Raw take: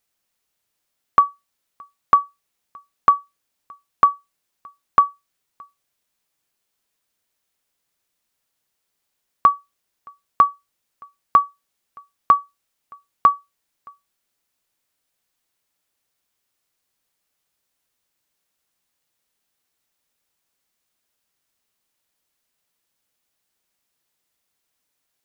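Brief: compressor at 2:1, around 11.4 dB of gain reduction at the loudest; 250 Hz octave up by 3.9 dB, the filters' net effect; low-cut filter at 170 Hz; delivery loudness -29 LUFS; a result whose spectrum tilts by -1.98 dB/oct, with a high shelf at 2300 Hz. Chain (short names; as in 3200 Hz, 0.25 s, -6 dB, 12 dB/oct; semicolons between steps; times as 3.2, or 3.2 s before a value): HPF 170 Hz; bell 250 Hz +6.5 dB; high shelf 2300 Hz -8 dB; compressor 2:1, threshold -32 dBFS; gain +3 dB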